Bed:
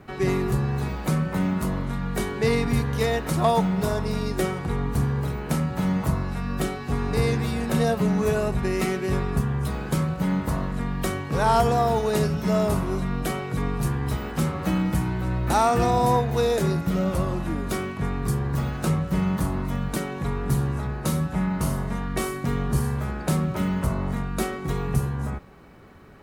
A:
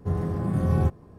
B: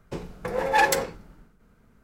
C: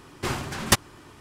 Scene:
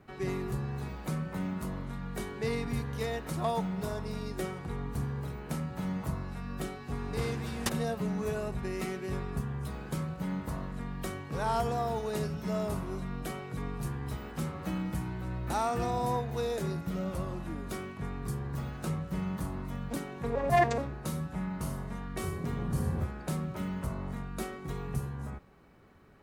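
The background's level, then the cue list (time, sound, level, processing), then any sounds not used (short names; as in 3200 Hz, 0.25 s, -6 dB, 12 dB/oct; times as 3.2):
bed -10.5 dB
6.94 add C -14.5 dB
19.78 add B -4 dB + arpeggiated vocoder minor triad, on A#3, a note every 0.142 s
22.17 add A -14 dB + tilt shelf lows +3.5 dB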